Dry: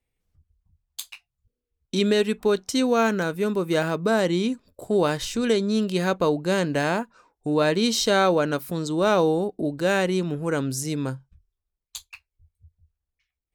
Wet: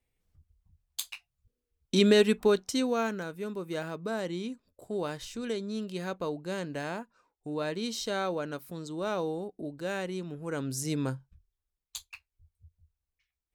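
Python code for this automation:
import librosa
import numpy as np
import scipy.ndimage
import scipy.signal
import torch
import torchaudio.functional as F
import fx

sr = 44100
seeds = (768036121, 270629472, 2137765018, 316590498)

y = fx.gain(x, sr, db=fx.line((2.33, -0.5), (3.25, -12.0), (10.37, -12.0), (10.91, -3.5)))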